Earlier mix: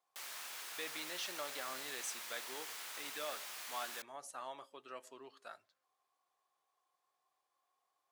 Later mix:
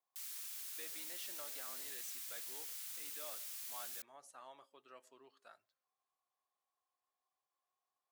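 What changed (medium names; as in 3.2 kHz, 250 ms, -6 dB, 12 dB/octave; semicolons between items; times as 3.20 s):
speech -9.0 dB; background: add differentiator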